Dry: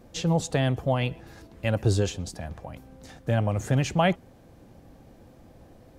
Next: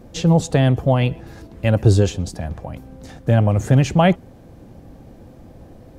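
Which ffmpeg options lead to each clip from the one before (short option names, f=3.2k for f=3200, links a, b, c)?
-af "tiltshelf=f=640:g=3,volume=7dB"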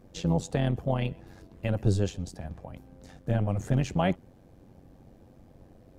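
-af "tremolo=f=93:d=0.667,volume=-8.5dB"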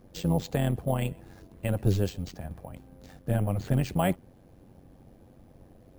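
-af "acrusher=samples=4:mix=1:aa=0.000001"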